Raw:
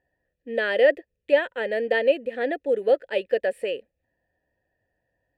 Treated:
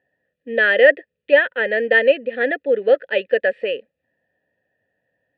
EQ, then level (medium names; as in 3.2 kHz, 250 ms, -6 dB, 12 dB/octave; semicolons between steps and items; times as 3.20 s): band-stop 2.2 kHz, Q 14; dynamic bell 1.7 kHz, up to +6 dB, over -39 dBFS, Q 1.7; cabinet simulation 170–3600 Hz, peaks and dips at 340 Hz -7 dB, 720 Hz -4 dB, 1 kHz -9 dB; +6.5 dB